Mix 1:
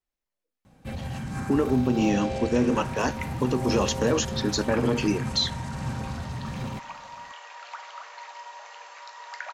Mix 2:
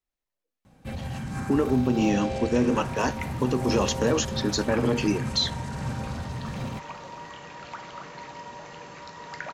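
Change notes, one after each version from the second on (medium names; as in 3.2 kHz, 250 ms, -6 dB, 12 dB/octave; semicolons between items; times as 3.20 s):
second sound: remove high-pass 670 Hz 24 dB/octave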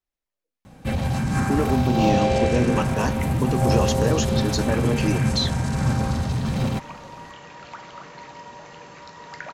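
first sound +10.0 dB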